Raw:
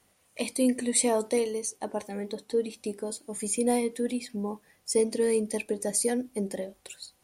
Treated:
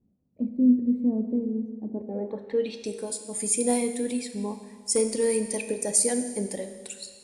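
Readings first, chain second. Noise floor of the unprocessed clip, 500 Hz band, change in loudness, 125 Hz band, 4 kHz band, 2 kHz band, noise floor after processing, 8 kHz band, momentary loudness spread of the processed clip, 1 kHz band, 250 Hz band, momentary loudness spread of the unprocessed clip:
−67 dBFS, −0.5 dB, +2.5 dB, can't be measured, −0.5 dB, −1.5 dB, −64 dBFS, +3.5 dB, 13 LU, −3.0 dB, +5.0 dB, 11 LU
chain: wave folding −15.5 dBFS
low-pass filter sweep 230 Hz → 8,600 Hz, 0:01.88–0:02.94
four-comb reverb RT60 1.6 s, combs from 25 ms, DRR 8 dB

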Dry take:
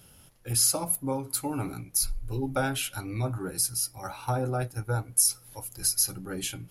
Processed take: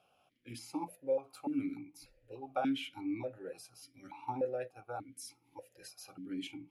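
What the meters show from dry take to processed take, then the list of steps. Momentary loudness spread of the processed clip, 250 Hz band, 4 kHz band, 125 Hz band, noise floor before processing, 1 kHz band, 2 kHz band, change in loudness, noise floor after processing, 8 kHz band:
17 LU, −3.5 dB, −15.5 dB, −22.0 dB, −56 dBFS, −7.0 dB, −12.0 dB, −12.0 dB, −73 dBFS, −28.5 dB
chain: formant filter that steps through the vowels 3.4 Hz
level +3 dB

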